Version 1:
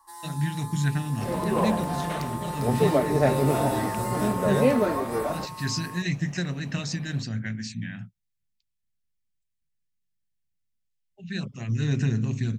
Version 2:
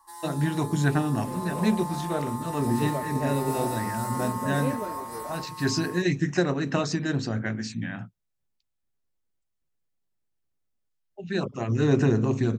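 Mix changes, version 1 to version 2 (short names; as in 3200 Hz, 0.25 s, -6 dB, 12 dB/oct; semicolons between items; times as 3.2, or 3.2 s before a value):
speech: add band shelf 620 Hz +13.5 dB 2.5 oct; second sound -11.0 dB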